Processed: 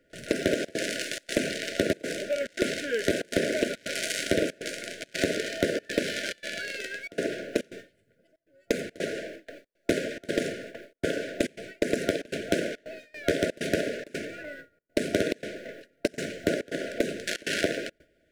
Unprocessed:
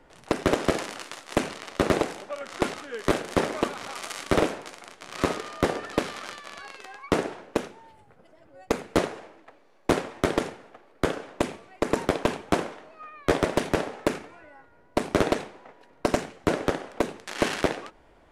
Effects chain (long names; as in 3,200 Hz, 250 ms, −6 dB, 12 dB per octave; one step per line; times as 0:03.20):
mu-law and A-law mismatch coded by mu
brick-wall band-stop 680–1,400 Hz
noise gate with hold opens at −36 dBFS
low-shelf EQ 73 Hz −10.5 dB
in parallel at 0 dB: brickwall limiter −18.5 dBFS, peak gain reduction 9 dB
on the sum: downward compressor, threshold −21 dBFS, peak gain reduction 7.5 dB
gate pattern "xxxxxx.xxxx." 140 BPM −24 dB